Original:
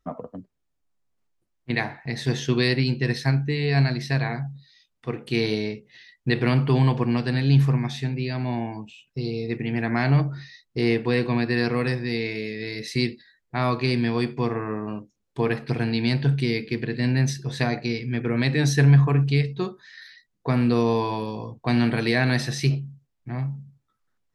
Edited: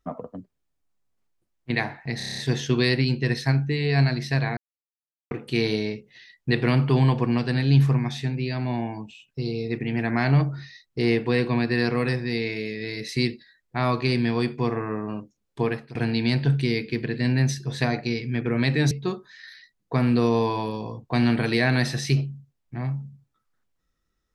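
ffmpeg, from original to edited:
-filter_complex "[0:a]asplit=12[a][b][c][d][e][f][g][h][i][j][k][l];[a]atrim=end=2.202[m];[b]atrim=start=2.168:end=2.202[n];[c]atrim=start=2.168:end=2.202[o];[d]atrim=start=2.168:end=2.202[p];[e]atrim=start=2.168:end=2.202[q];[f]atrim=start=2.168:end=2.202[r];[g]atrim=start=2.168:end=2.202[s];[h]atrim=start=2.168:end=4.36,asetpts=PTS-STARTPTS,afade=t=out:st=2.188:d=0.004:c=hsin[t];[i]atrim=start=4.36:end=5.1,asetpts=PTS-STARTPTS,volume=0[u];[j]atrim=start=5.1:end=15.74,asetpts=PTS-STARTPTS,afade=t=in:d=0.004:c=hsin,afade=t=out:st=10.3:d=0.34:silence=0.0891251[v];[k]atrim=start=15.74:end=18.702,asetpts=PTS-STARTPTS,afade=t=in:d=0.004:c=hsin:silence=0.0891251[w];[l]atrim=start=19.448[x];[m][n]acrossfade=d=0.004:c1=hsin:c2=hsin[y];[y][o]acrossfade=d=0.004:c1=hsin:c2=hsin[z];[z][p]acrossfade=d=0.004:c1=hsin:c2=hsin[aa];[aa][q]acrossfade=d=0.004:c1=hsin:c2=hsin[ab];[ab][r]acrossfade=d=0.004:c1=hsin:c2=hsin[ac];[ac][s]acrossfade=d=0.004:c1=hsin:c2=hsin[ad];[t][u][v][w]concat=n=4:v=0:a=1[ae];[ad][ae]acrossfade=d=0.004:c1=hsin:c2=hsin[af];[af][x]acrossfade=d=0.004:c1=hsin:c2=hsin"

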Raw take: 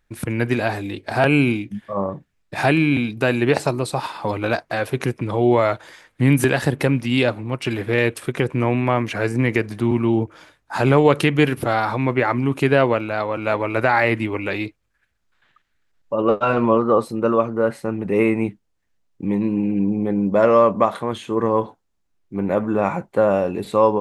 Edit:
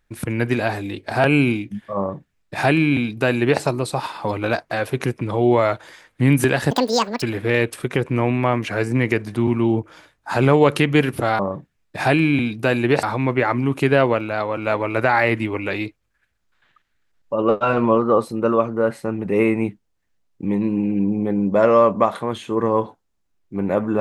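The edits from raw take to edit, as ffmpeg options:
-filter_complex "[0:a]asplit=5[a][b][c][d][e];[a]atrim=end=6.714[f];[b]atrim=start=6.71:end=7.66,asetpts=PTS-STARTPTS,asetrate=82026,aresample=44100,atrim=end_sample=22524,asetpts=PTS-STARTPTS[g];[c]atrim=start=7.656:end=11.832[h];[d]atrim=start=1.968:end=3.612[i];[e]atrim=start=11.828[j];[f][g]acrossfade=d=0.004:c1=hsin:c2=hsin[k];[k][h]acrossfade=d=0.004:c1=hsin:c2=hsin[l];[l][i]acrossfade=d=0.004:c1=hsin:c2=hsin[m];[m][j]acrossfade=d=0.004:c1=hsin:c2=hsin"

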